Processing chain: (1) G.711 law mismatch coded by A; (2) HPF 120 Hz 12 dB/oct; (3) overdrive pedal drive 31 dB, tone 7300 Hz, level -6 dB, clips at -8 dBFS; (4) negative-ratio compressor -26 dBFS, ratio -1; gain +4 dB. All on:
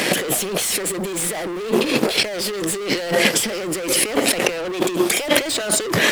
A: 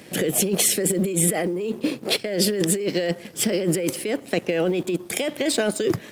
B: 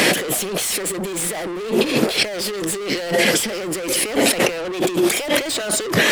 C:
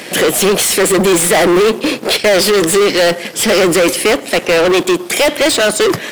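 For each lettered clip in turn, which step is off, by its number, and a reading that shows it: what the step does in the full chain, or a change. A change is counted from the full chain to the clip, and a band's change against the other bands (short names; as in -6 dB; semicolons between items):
3, momentary loudness spread change +1 LU; 1, distortion -28 dB; 4, crest factor change -11.5 dB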